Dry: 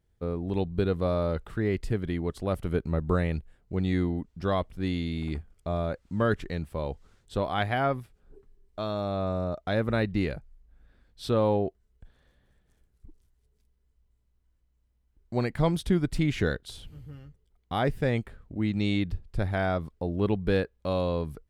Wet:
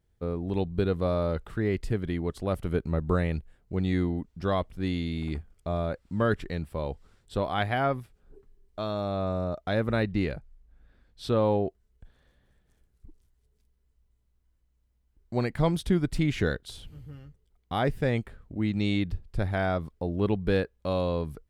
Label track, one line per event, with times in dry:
5.720000	7.730000	notch filter 6,400 Hz
10.030000	11.500000	high-shelf EQ 9,000 Hz −6 dB

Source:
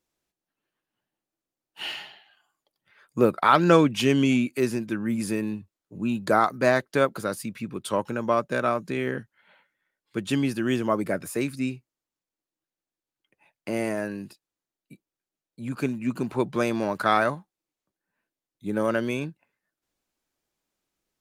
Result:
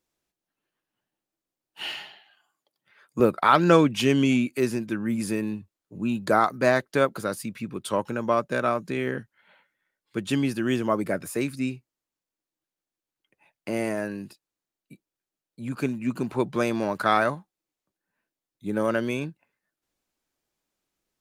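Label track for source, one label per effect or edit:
2.020000	3.200000	high-pass filter 120 Hz

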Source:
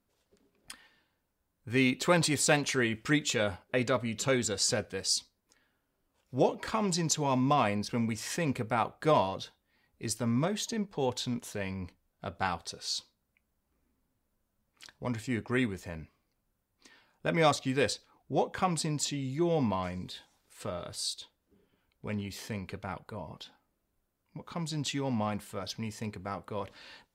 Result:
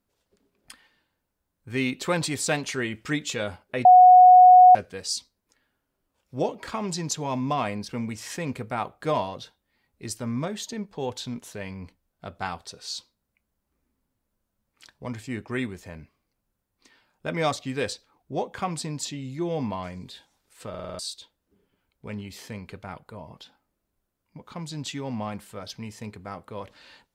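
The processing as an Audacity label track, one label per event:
3.850000	4.750000	beep over 732 Hz −8 dBFS
20.690000	20.690000	stutter in place 0.05 s, 6 plays

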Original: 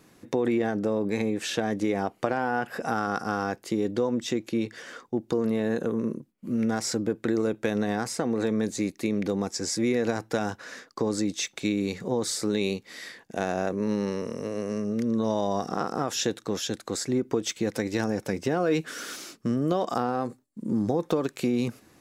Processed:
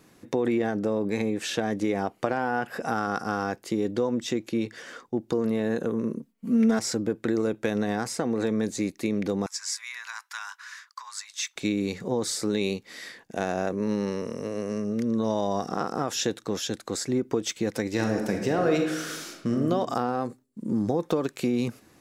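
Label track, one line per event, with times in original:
6.170000	6.790000	comb filter 4.4 ms, depth 92%
9.460000	11.560000	Chebyshev high-pass filter 990 Hz, order 5
17.900000	19.610000	thrown reverb, RT60 0.98 s, DRR 2.5 dB

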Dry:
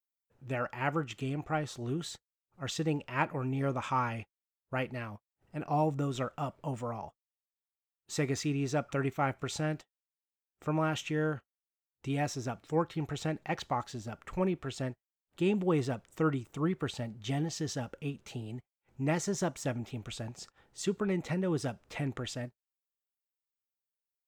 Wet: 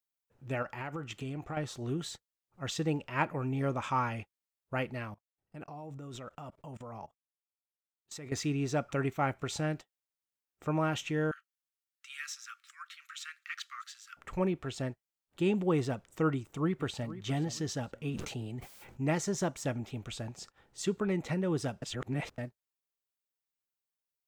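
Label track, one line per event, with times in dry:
0.620000	1.570000	downward compressor 10 to 1, threshold −34 dBFS
5.140000	8.320000	output level in coarse steps of 22 dB
11.310000	14.170000	Butterworth high-pass 1,200 Hz 96 dB per octave
16.320000	17.110000	delay throw 470 ms, feedback 30%, level −14.5 dB
18.080000	19.110000	level that may fall only so fast at most 44 dB per second
21.820000	22.380000	reverse

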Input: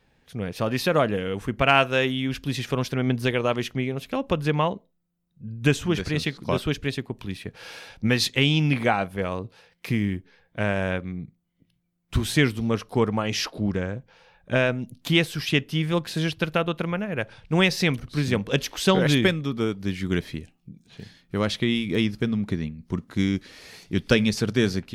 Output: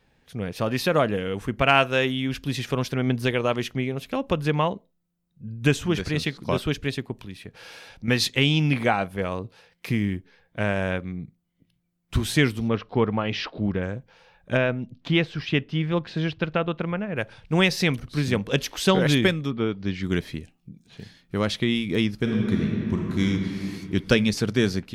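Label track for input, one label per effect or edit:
7.180000	8.080000	downward compressor 1.5 to 1, threshold −44 dBFS
12.680000	13.830000	low-pass filter 4,000 Hz 24 dB per octave
14.570000	17.160000	high-frequency loss of the air 200 metres
19.500000	20.020000	low-pass filter 3,200 Hz → 6,400 Hz 24 dB per octave
22.160000	23.240000	thrown reverb, RT60 2.9 s, DRR −1 dB

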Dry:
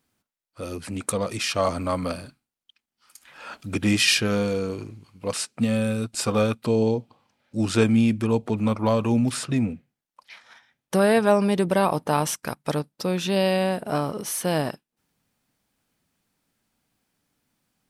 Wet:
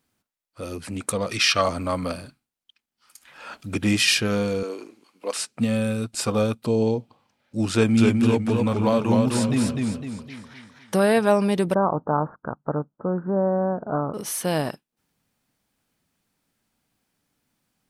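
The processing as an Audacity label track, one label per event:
1.310000	1.620000	gain on a spectral selection 1,100–6,100 Hz +8 dB
4.630000	5.380000	high-pass filter 290 Hz 24 dB per octave
6.300000	6.800000	parametric band 1,900 Hz −5 dB 1.4 octaves
7.720000	11.090000	feedback echo with a swinging delay time 254 ms, feedback 42%, depth 88 cents, level −3 dB
11.740000	14.140000	Butterworth low-pass 1,500 Hz 72 dB per octave

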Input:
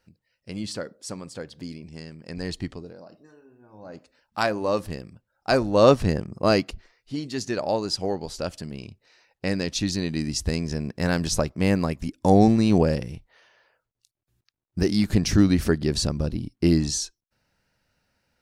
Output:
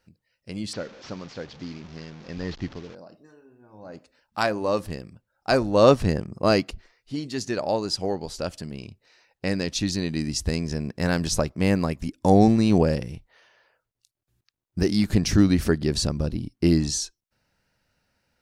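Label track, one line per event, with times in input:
0.730000	2.950000	linear delta modulator 32 kbit/s, step −40.5 dBFS

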